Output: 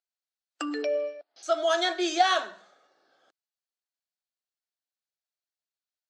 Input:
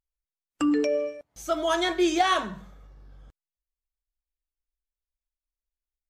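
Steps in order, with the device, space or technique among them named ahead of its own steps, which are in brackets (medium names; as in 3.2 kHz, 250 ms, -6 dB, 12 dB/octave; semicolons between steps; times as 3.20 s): phone speaker on a table (cabinet simulation 390–7900 Hz, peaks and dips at 470 Hz -7 dB, 690 Hz +4 dB, 1 kHz -8 dB, 1.5 kHz +3 dB, 2.2 kHz -4 dB, 4.3 kHz +6 dB); 0.82–1.43 s: Chebyshev low-pass 5.1 kHz, order 5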